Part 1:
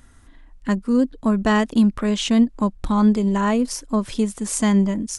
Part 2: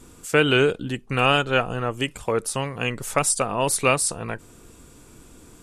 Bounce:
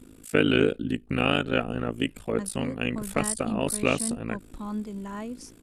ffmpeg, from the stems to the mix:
-filter_complex "[0:a]adelay=1700,volume=-16.5dB[a];[1:a]tremolo=f=54:d=0.974,equalizer=f=250:t=o:w=0.67:g=8,equalizer=f=1k:t=o:w=0.67:g=-8,equalizer=f=6.3k:t=o:w=0.67:g=-9,volume=-0.5dB[b];[a][b]amix=inputs=2:normalize=0"

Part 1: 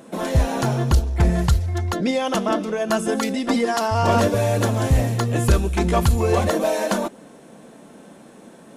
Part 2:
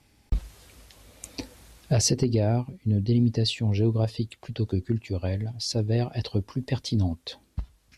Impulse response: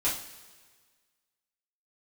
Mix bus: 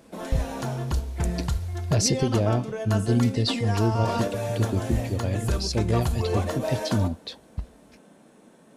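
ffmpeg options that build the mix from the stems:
-filter_complex "[0:a]volume=-10dB,asplit=2[a][b];[b]volume=-18.5dB[c];[1:a]volume=0dB[d];[2:a]atrim=start_sample=2205[e];[c][e]afir=irnorm=-1:irlink=0[f];[a][d][f]amix=inputs=3:normalize=0"

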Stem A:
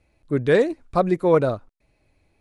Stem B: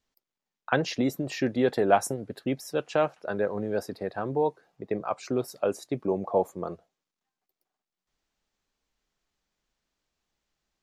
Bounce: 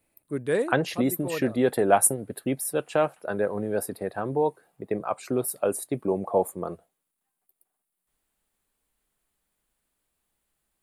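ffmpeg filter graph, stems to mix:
-filter_complex "[0:a]highpass=140,volume=-7.5dB[a];[1:a]volume=1.5dB,asplit=2[b][c];[c]apad=whole_len=105960[d];[a][d]sidechaincompress=threshold=-29dB:ratio=8:attack=30:release=1390[e];[e][b]amix=inputs=2:normalize=0,highshelf=f=7.6k:t=q:w=3:g=10"

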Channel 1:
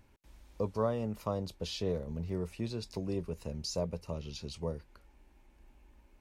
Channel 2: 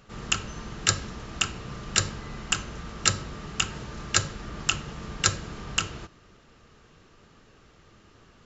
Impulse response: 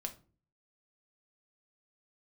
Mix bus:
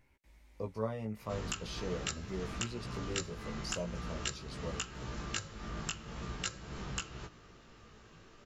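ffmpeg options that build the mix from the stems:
-filter_complex "[0:a]equalizer=f=2.1k:w=4.1:g=10.5,volume=-2.5dB[a];[1:a]acompressor=threshold=-35dB:ratio=5,adelay=1200,volume=1.5dB[b];[a][b]amix=inputs=2:normalize=0,flanger=delay=15.5:depth=2.9:speed=0.44"

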